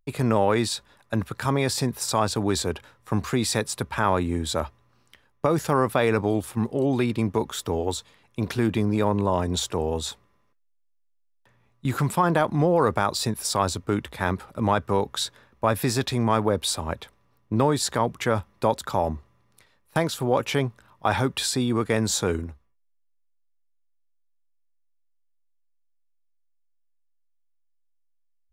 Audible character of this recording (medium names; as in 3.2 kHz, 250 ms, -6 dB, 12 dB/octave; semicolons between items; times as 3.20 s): noise floor -67 dBFS; spectral tilt -5.0 dB/octave